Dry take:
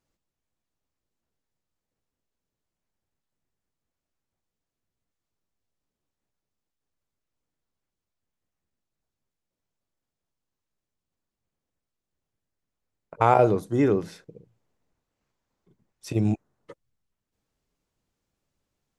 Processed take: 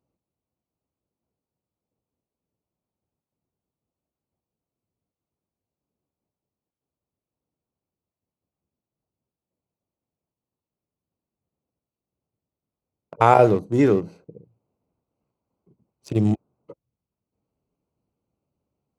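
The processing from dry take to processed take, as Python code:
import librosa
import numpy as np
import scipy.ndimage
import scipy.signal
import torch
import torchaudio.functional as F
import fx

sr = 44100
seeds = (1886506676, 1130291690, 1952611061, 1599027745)

y = fx.wiener(x, sr, points=25)
y = scipy.signal.sosfilt(scipy.signal.butter(2, 75.0, 'highpass', fs=sr, output='sos'), y)
y = fx.high_shelf(y, sr, hz=3700.0, db=5.0)
y = y * librosa.db_to_amplitude(4.0)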